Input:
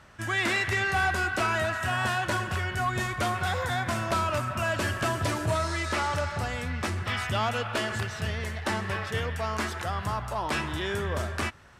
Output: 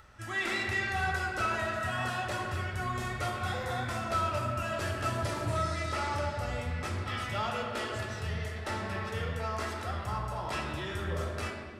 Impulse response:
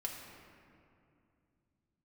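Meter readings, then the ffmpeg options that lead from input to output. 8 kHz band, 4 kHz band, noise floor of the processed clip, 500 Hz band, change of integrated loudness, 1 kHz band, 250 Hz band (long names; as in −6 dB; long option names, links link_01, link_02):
−6.5 dB, −6.0 dB, −40 dBFS, −4.5 dB, −4.5 dB, −4.5 dB, −5.0 dB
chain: -filter_complex "[0:a]acompressor=mode=upward:threshold=-47dB:ratio=2.5[link_01];[1:a]atrim=start_sample=2205,asetrate=83790,aresample=44100[link_02];[link_01][link_02]afir=irnorm=-1:irlink=0"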